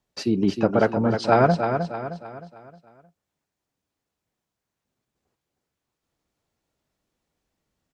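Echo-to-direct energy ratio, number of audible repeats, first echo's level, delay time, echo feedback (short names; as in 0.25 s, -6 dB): -6.0 dB, 4, -7.0 dB, 0.31 s, 42%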